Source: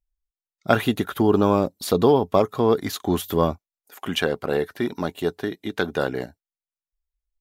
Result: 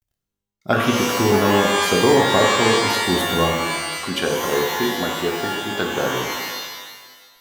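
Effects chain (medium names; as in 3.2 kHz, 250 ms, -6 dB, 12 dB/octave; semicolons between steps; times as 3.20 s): de-hum 233 Hz, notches 14; word length cut 12-bit, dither none; pitch-shifted reverb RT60 1.4 s, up +12 st, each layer -2 dB, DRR 0.5 dB; trim -1 dB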